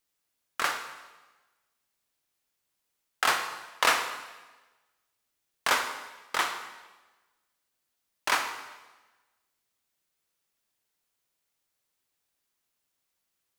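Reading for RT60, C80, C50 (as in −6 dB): 1.2 s, 9.5 dB, 8.0 dB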